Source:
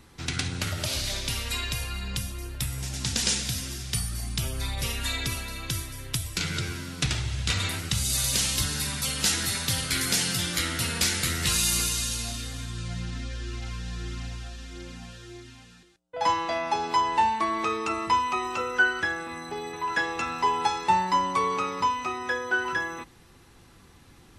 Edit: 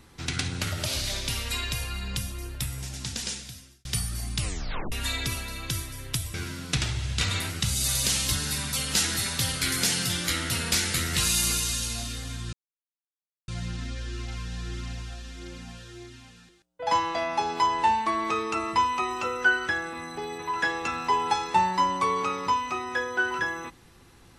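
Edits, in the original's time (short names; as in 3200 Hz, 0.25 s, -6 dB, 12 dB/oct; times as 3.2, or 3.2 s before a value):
2.48–3.85 fade out
4.36 tape stop 0.56 s
6.34–6.63 cut
12.82 insert silence 0.95 s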